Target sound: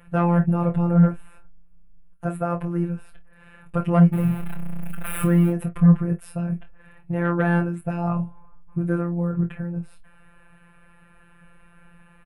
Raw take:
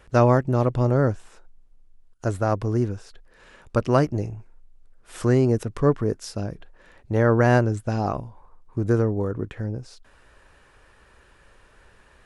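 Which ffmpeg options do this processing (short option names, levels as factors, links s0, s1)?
-filter_complex "[0:a]asettb=1/sr,asplit=3[s0][s1][s2];[s0]atrim=end=4.134[s3];[s1]atrim=start=4.13:end=5.5,asetpts=PTS-STARTPTS,afade=t=in:d=0.004:c=qsin,afade=t=out:st=1.366:d=0.004:c=qsin,aeval=exprs='val(0)+0.5*0.0631*sgn(val(0))':c=same[s4];[s2]atrim=start=5.496[s5];[s3][s4]acrossfade=d=0.004:c1=hsin:c2=qsin[s6];[s6][s5]acrossfade=d=0.004:c1=qsin:c2=hsin,firequalizer=gain_entry='entry(110,0);entry(160,15);entry(250,-7);entry(680,3);entry(990,-2);entry(1700,1);entry(2600,0);entry(4200,-16);entry(6000,-23);entry(9700,2)':delay=0.05:min_phase=1,afftfilt=real='hypot(re,im)*cos(PI*b)':imag='0':win_size=1024:overlap=0.75,aecho=1:1:24|50:0.422|0.126,acontrast=87,volume=0.596"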